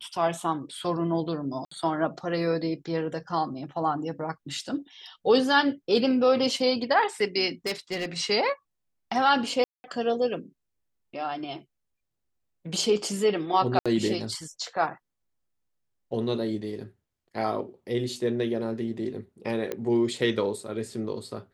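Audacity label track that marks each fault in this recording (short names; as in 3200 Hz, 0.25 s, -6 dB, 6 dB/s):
1.650000	1.710000	gap 64 ms
7.660000	8.060000	clipped -24.5 dBFS
9.640000	9.840000	gap 0.2 s
13.790000	13.860000	gap 66 ms
19.720000	19.720000	pop -17 dBFS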